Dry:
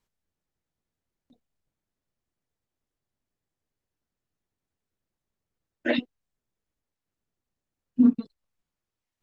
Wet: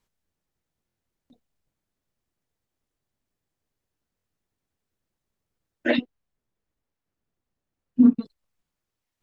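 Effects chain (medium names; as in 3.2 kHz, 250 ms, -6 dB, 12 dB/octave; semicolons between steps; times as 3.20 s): 5.96–8.21 s: treble shelf 3.7 kHz -7.5 dB; buffer glitch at 0.87/4.16 s, samples 1024, times 3; trim +3 dB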